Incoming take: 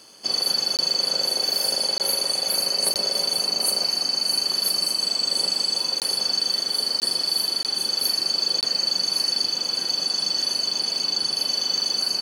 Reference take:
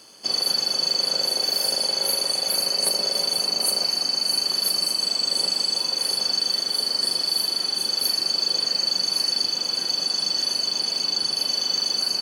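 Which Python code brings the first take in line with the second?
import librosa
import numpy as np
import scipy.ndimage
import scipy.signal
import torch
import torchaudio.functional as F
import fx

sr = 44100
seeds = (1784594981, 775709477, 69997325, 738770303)

y = fx.fix_interpolate(x, sr, at_s=(0.77, 1.98, 2.94, 6.0, 7.0, 7.63, 8.61), length_ms=18.0)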